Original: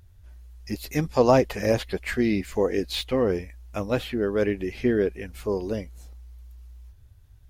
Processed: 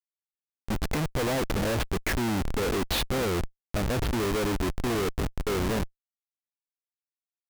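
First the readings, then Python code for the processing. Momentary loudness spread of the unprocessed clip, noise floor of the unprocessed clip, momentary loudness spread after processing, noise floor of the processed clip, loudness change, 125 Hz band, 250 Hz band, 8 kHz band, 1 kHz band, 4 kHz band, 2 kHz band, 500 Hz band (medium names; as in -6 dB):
13 LU, -53 dBFS, 5 LU, under -85 dBFS, -3.5 dB, +0.5 dB, -3.5 dB, +6.0 dB, -2.0 dB, +1.5 dB, +0.5 dB, -6.5 dB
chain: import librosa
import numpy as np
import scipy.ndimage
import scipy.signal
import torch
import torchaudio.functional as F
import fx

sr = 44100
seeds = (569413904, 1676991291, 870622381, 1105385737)

y = fx.schmitt(x, sr, flips_db=-31.0)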